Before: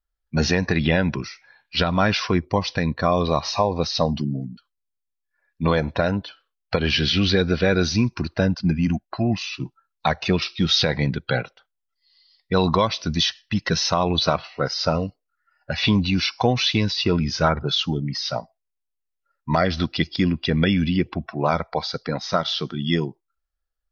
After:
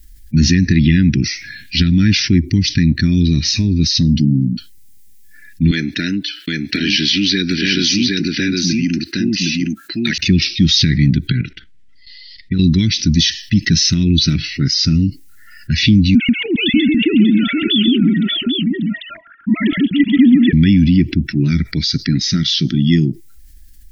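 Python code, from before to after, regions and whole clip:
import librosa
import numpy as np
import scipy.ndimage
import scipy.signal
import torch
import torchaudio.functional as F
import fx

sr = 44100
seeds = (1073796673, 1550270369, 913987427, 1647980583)

y = fx.chain(x, sr, fx.highpass(hz=420.0, slope=12),
    fx.echo_single(ms=764, db=-3.5), at=(5.71, 10.18))
y = fx.chain(y, sr, fx.lowpass(hz=2700.0, slope=12),
    fx.level_steps(step_db=14), at=(11.32, 12.59))
y = fx.chain(y, sr, fx.sine_speech(),
    fx.echo_multitap(ms=(136, 589, 793), db=(-4.5, -9.0, -10.0)), at=(16.15, 20.53))
y = scipy.signal.sosfilt(scipy.signal.ellip(3, 1.0, 40, [300.0, 1900.0], 'bandstop', fs=sr, output='sos'), y)
y = fx.peak_eq(y, sr, hz=2600.0, db=-9.5, octaves=2.3)
y = fx.env_flatten(y, sr, amount_pct=50)
y = F.gain(torch.from_numpy(y), 7.5).numpy()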